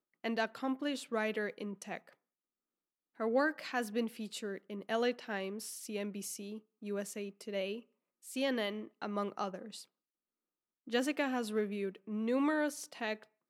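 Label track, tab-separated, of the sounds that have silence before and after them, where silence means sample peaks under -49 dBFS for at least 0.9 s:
3.200000	9.840000	sound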